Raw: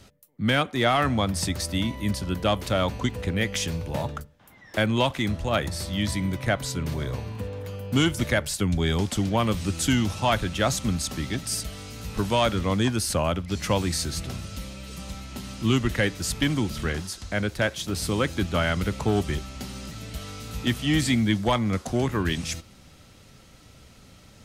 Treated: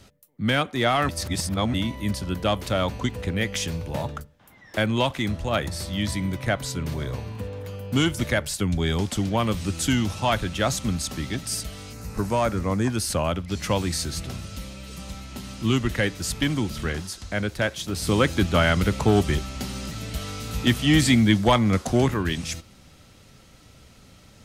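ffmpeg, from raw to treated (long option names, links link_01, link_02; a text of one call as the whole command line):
ffmpeg -i in.wav -filter_complex "[0:a]asettb=1/sr,asplit=3[link_01][link_02][link_03];[link_01]atrim=end=11.934[link_04];[link_02]atrim=start=11.93:end=12.9,asetpts=PTS-STARTPTS,afade=type=in:duration=0.004:curve=qsin,afade=type=out:start_time=0.966:duration=0.004:curve=qsin,equalizer=frequency=3300:width_type=o:width=0.6:gain=-14[link_05];[link_03]atrim=start=12.896[link_06];[link_04][link_05]acrossfade=duration=0.004:curve1=hsin:curve2=qsin[link_07];[link_07][link_06]acrossfade=duration=0.004:curve1=qsin:curve2=hsin,asplit=5[link_08][link_09][link_10][link_11][link_12];[link_08]atrim=end=1.092[link_13];[link_09]atrim=start=1.088:end=1.742,asetpts=PTS-STARTPTS,areverse[link_14];[link_10]atrim=start=1.738:end=18.072[link_15];[link_11]atrim=start=18.068:end=22.142,asetpts=PTS-STARTPTS,volume=4.5dB[link_16];[link_12]atrim=start=22.138[link_17];[link_13][link_14]acrossfade=duration=0.004:curve1=hsin:curve2=hsin[link_18];[link_18][link_15]acrossfade=duration=0.004:curve1=hsin:curve2=hsin[link_19];[link_19][link_16]acrossfade=duration=0.004:curve1=hsin:curve2=hsin[link_20];[link_20][link_17]acrossfade=duration=0.004:curve1=hsin:curve2=hsin" out.wav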